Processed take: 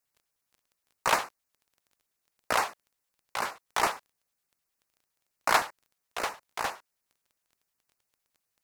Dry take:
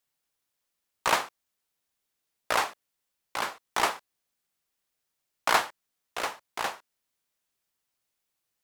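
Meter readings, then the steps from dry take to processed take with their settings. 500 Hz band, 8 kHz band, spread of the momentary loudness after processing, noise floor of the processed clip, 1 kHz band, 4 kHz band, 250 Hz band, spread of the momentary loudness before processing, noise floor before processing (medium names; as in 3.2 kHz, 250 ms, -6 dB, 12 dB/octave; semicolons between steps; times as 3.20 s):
-0.5 dB, -0.5 dB, 15 LU, -83 dBFS, -0.5 dB, -2.5 dB, -1.0 dB, 15 LU, -82 dBFS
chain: LFO notch square 9.7 Hz 280–3300 Hz; crackle 12 per s -49 dBFS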